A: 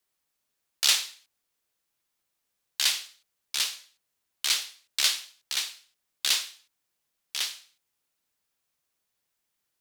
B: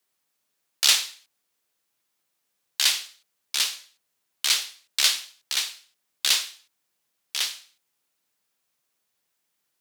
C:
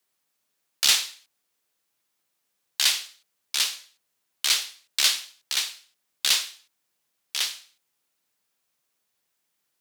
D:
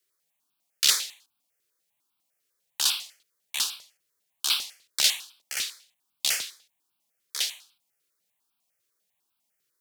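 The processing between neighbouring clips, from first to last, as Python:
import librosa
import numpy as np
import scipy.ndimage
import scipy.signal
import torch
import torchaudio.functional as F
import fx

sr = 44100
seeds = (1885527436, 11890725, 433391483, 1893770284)

y1 = scipy.signal.sosfilt(scipy.signal.butter(2, 120.0, 'highpass', fs=sr, output='sos'), x)
y1 = y1 * 10.0 ** (3.5 / 20.0)
y2 = np.clip(10.0 ** (11.0 / 20.0) * y1, -1.0, 1.0) / 10.0 ** (11.0 / 20.0)
y3 = fx.phaser_held(y2, sr, hz=10.0, low_hz=220.0, high_hz=1900.0)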